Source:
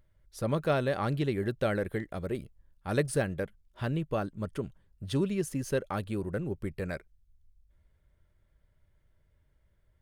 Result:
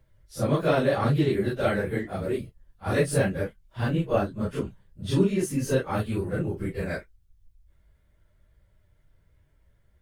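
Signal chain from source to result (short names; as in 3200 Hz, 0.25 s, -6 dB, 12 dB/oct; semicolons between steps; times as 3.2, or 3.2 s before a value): phase scrambler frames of 0.1 s; gain +5.5 dB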